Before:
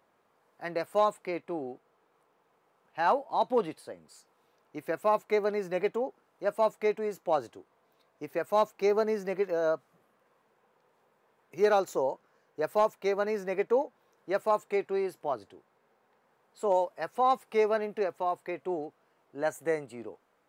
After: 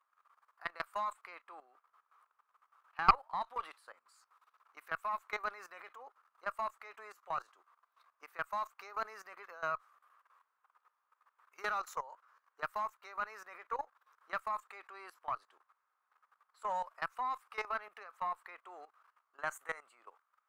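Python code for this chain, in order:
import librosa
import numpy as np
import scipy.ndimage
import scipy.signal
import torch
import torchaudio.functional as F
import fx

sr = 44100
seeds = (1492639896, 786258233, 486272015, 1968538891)

y = fx.highpass_res(x, sr, hz=1200.0, q=5.3)
y = fx.level_steps(y, sr, step_db=16)
y = fx.cheby_harmonics(y, sr, harmonics=(4,), levels_db=(-17,), full_scale_db=-8.5)
y = y * 10.0 ** (-3.0 / 20.0)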